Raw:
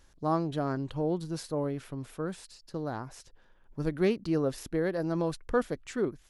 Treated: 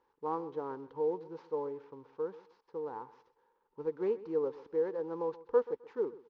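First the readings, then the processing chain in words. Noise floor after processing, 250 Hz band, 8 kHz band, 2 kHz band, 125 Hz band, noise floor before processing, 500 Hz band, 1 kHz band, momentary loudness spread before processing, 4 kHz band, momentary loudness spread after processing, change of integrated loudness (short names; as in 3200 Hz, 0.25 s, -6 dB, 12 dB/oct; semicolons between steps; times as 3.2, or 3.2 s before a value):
-77 dBFS, -11.5 dB, under -30 dB, -14.0 dB, -20.5 dB, -61 dBFS, -1.5 dB, -4.5 dB, 11 LU, under -20 dB, 15 LU, -4.0 dB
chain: CVSD 32 kbps; double band-pass 650 Hz, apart 0.94 oct; feedback echo 0.13 s, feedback 24%, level -18 dB; gain +3 dB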